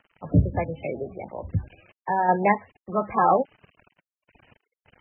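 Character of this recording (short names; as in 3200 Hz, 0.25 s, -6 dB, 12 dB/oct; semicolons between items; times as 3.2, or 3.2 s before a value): random-step tremolo; a quantiser's noise floor 8-bit, dither none; MP3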